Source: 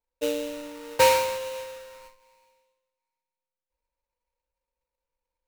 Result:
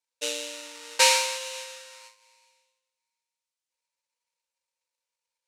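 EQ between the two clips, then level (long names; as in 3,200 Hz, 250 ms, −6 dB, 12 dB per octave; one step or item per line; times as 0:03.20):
meter weighting curve ITU-R 468
−3.0 dB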